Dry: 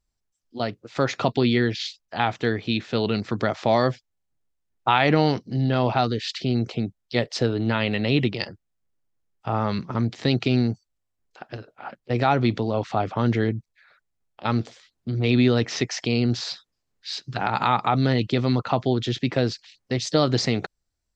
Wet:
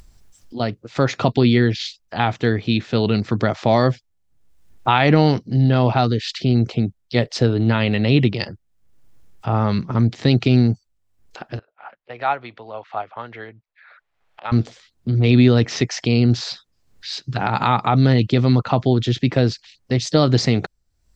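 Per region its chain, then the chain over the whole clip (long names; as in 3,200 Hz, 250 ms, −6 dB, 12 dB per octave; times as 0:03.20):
0:11.59–0:14.52: three-way crossover with the lows and the highs turned down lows −22 dB, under 560 Hz, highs −21 dB, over 3,400 Hz + expander for the loud parts, over −37 dBFS
whole clip: low-shelf EQ 190 Hz +8 dB; upward compression, threshold −33 dBFS; level +2.5 dB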